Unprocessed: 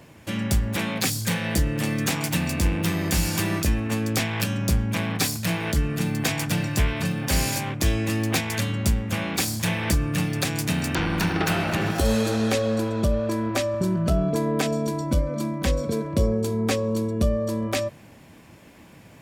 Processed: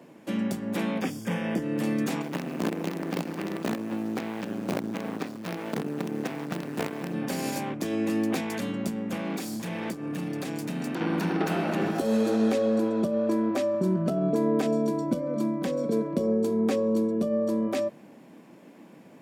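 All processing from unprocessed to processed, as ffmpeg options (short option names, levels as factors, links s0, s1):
-filter_complex "[0:a]asettb=1/sr,asplit=3[s0][s1][s2];[s0]atrim=end=1.014[s3];[s1]atrim=start=1.01:end=1.62,asetpts=PTS-STARTPTS,afade=t=in:d=0.004:c=qsin,afade=t=out:st=0.606:d=0.004:c=qsin,acrossover=split=4000[s4][s5];[s5]acompressor=threshold=0.0141:ratio=4:attack=1:release=60[s6];[s4][s6]amix=inputs=2:normalize=0,asuperstop=centerf=4100:order=4:qfactor=3.5[s7];[s2]atrim=start=1.616[s8];[s3][s7]acrossfade=d=0.004:c1=hsin:c2=qsin[s9];[s9][s8]acrossfade=d=0.004:c1=qsin:c2=hsin,asettb=1/sr,asplit=3[s10][s11][s12];[s10]atrim=end=2.224[s13];[s11]atrim=start=2.22:end=7.14,asetpts=PTS-STARTPTS,afade=t=in:d=0.004:c=qsin,afade=t=out:st=4.916:d=0.004:c=qsin,lowpass=2500,acrusher=bits=4:dc=4:mix=0:aa=0.000001[s14];[s12]atrim=start=7.136[s15];[s13][s14]acrossfade=d=0.004:c1=hsin:c2=qsin[s16];[s16][s15]acrossfade=d=0.004:c1=qsin:c2=hsin,asettb=1/sr,asplit=3[s17][s18][s19];[s17]atrim=end=9.174[s20];[s18]atrim=start=9.17:end=11.01,asetpts=PTS-STARTPTS,afade=t=in:d=0.004:c=qsin,afade=t=out:st=1.836:d=0.004:c=qsin,acompressor=threshold=0.0631:ratio=6:attack=3.2:release=140:knee=1:detection=peak,asoftclip=type=hard:threshold=0.0596[s21];[s19]atrim=start=11.006[s22];[s20][s21]acrossfade=d=0.004:c1=hsin:c2=qsin[s23];[s23][s22]acrossfade=d=0.004:c1=qsin:c2=hsin,alimiter=limit=0.178:level=0:latency=1:release=51,highpass=f=200:w=0.5412,highpass=f=200:w=1.3066,tiltshelf=f=970:g=6.5,volume=0.708"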